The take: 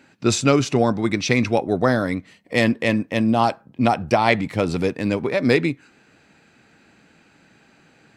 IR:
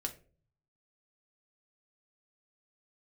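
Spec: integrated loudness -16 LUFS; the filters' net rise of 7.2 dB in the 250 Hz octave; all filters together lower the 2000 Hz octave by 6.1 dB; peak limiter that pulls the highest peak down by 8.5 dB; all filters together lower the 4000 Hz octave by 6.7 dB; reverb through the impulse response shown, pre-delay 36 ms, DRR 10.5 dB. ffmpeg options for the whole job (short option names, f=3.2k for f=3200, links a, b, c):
-filter_complex "[0:a]equalizer=f=250:t=o:g=8.5,equalizer=f=2k:t=o:g=-5.5,equalizer=f=4k:t=o:g=-7,alimiter=limit=-9dB:level=0:latency=1,asplit=2[a][b];[1:a]atrim=start_sample=2205,adelay=36[c];[b][c]afir=irnorm=-1:irlink=0,volume=-10.5dB[d];[a][d]amix=inputs=2:normalize=0,volume=3dB"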